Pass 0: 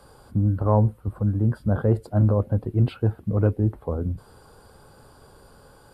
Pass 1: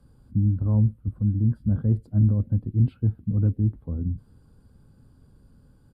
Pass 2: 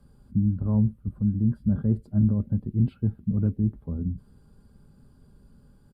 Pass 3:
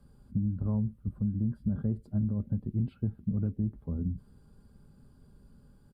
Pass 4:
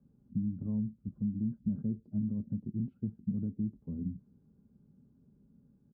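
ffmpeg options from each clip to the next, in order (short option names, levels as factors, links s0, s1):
-af "firequalizer=gain_entry='entry(260,0);entry(380,-14);entry(760,-21);entry(1600,-17)':delay=0.05:min_phase=1"
-af "aecho=1:1:5:0.38"
-af "acompressor=threshold=0.0708:ratio=6,volume=0.75"
-af "bandpass=f=220:t=q:w=1.4:csg=0,volume=0.891"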